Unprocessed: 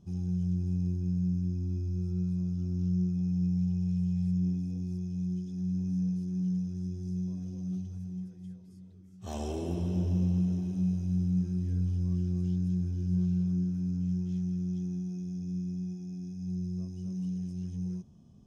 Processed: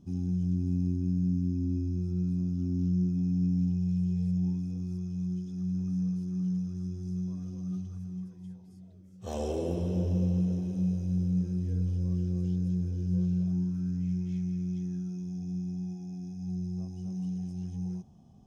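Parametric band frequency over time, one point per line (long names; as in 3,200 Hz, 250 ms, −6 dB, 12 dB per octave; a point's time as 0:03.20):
parametric band +14.5 dB 0.32 octaves
0:04.01 270 Hz
0:04.63 1,200 Hz
0:08.17 1,200 Hz
0:09.24 500 Hz
0:13.34 500 Hz
0:14.05 2,200 Hz
0:14.80 2,200 Hz
0:15.37 780 Hz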